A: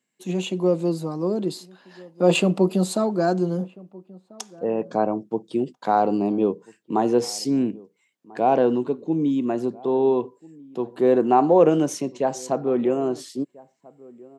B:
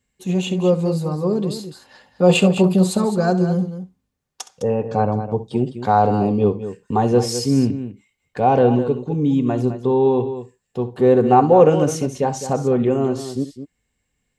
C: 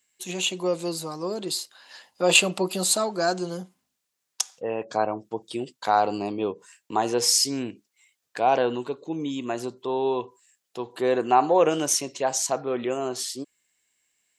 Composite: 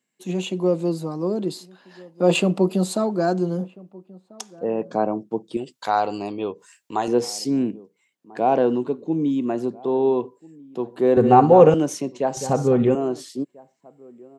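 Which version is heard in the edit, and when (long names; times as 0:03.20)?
A
0:05.57–0:07.08: punch in from C
0:11.17–0:11.74: punch in from B
0:12.37–0:12.95: punch in from B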